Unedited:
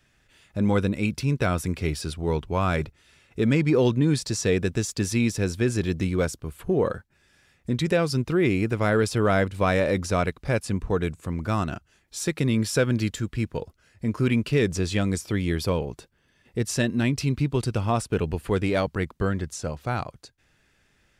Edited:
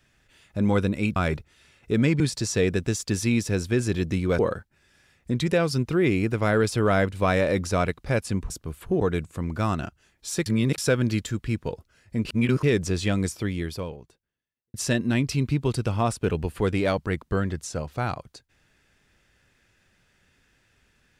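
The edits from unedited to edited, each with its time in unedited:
1.16–2.64 cut
3.68–4.09 cut
6.28–6.78 move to 10.89
12.35–12.67 reverse
14.14–14.52 reverse
15.19–16.63 fade out quadratic

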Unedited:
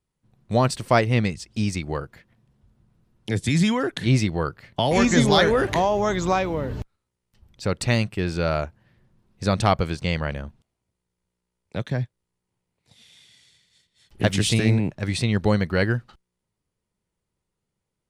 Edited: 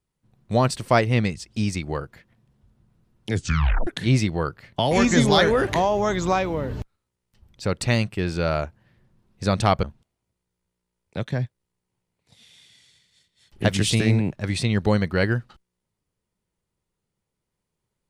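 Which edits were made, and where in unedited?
3.34 tape stop 0.53 s
9.83–10.42 cut

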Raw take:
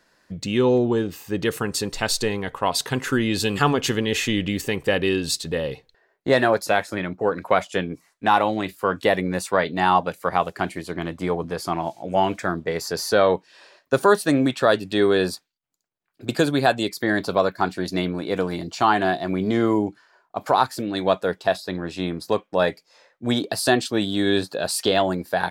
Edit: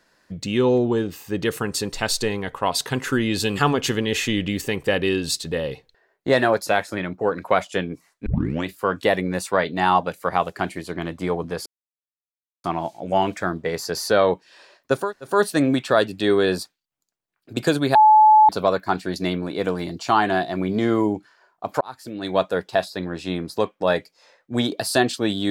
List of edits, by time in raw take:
8.26 tape start 0.40 s
11.66 insert silence 0.98 s
14.04 insert room tone 0.30 s, crossfade 0.24 s
16.67–17.21 bleep 861 Hz -8.5 dBFS
20.53–21.13 fade in

